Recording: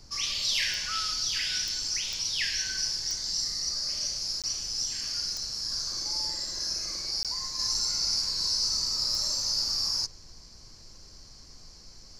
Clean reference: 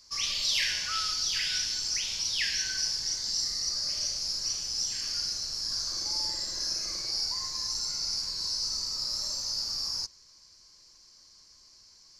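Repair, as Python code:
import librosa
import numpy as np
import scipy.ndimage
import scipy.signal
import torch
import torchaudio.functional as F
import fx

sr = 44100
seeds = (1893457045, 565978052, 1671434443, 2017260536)

y = fx.fix_declick_ar(x, sr, threshold=10.0)
y = fx.fix_interpolate(y, sr, at_s=(4.42, 7.23), length_ms=17.0)
y = fx.noise_reduce(y, sr, print_start_s=10.41, print_end_s=10.91, reduce_db=8.0)
y = fx.gain(y, sr, db=fx.steps((0.0, 0.0), (7.59, -4.0)))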